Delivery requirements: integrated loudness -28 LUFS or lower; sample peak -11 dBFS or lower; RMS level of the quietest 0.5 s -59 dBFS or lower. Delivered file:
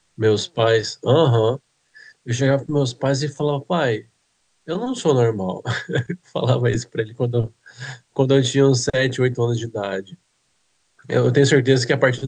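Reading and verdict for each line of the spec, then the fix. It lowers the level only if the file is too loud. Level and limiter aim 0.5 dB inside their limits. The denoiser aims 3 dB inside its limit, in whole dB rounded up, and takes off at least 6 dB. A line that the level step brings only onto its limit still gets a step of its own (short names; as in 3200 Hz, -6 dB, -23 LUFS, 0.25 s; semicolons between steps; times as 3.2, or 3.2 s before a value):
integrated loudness -20.0 LUFS: fail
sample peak -3.0 dBFS: fail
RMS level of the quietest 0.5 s -66 dBFS: OK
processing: gain -8.5 dB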